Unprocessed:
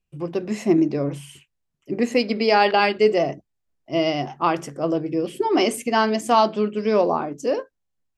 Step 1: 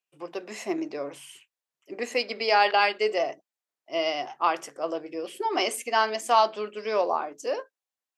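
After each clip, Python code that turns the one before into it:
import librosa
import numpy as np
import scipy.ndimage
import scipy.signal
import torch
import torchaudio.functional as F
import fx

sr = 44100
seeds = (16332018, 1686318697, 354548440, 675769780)

y = scipy.signal.sosfilt(scipy.signal.butter(2, 600.0, 'highpass', fs=sr, output='sos'), x)
y = F.gain(torch.from_numpy(y), -2.0).numpy()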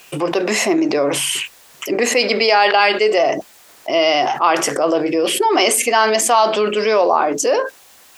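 y = fx.env_flatten(x, sr, amount_pct=70)
y = F.gain(torch.from_numpy(y), 5.5).numpy()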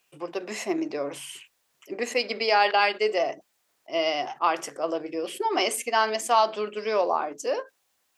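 y = fx.upward_expand(x, sr, threshold_db=-24.0, expansion=2.5)
y = F.gain(torch.from_numpy(y), -6.0).numpy()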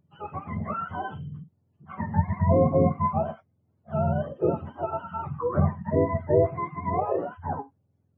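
y = fx.octave_mirror(x, sr, pivot_hz=660.0)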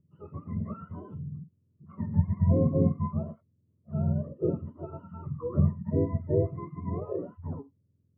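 y = np.convolve(x, np.full(56, 1.0 / 56))[:len(x)]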